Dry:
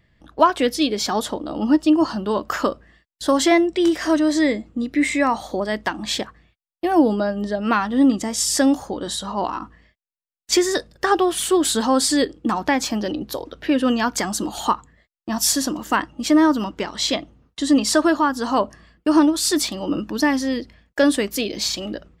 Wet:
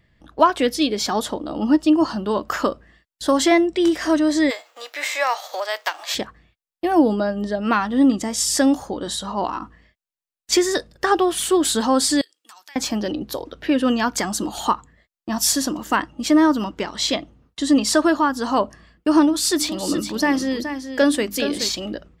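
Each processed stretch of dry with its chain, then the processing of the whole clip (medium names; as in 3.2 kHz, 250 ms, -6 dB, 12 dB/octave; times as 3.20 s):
4.49–6.14 s: formants flattened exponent 0.6 + steep high-pass 510 Hz + peaking EQ 9.4 kHz -12.5 dB 0.38 oct
12.21–12.76 s: high-pass 1.4 kHz 6 dB/octave + differentiator + compression 4:1, threshold -40 dBFS
19.27–21.71 s: hum notches 50/100/150/200/250/300 Hz + delay 422 ms -9 dB
whole clip: none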